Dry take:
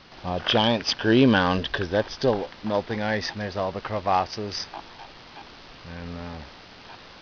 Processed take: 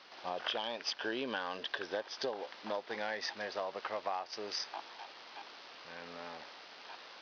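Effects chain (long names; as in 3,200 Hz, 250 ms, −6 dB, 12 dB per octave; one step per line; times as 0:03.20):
high-pass filter 470 Hz 12 dB per octave
downward compressor 12 to 1, threshold −28 dBFS, peak gain reduction 12 dB
level −5 dB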